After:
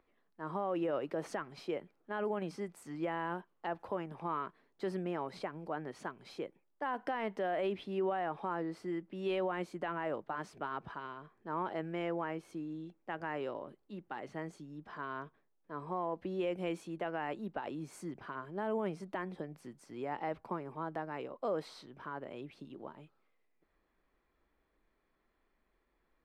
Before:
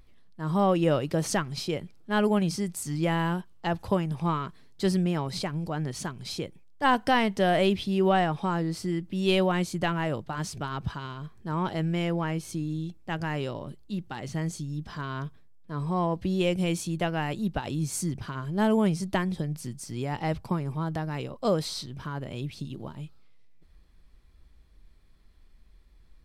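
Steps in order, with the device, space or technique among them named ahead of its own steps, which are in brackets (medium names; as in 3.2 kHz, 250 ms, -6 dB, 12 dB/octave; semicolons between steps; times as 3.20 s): DJ mixer with the lows and highs turned down (three-band isolator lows -22 dB, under 270 Hz, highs -19 dB, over 2.3 kHz; peak limiter -23 dBFS, peak gain reduction 11 dB); trim -3.5 dB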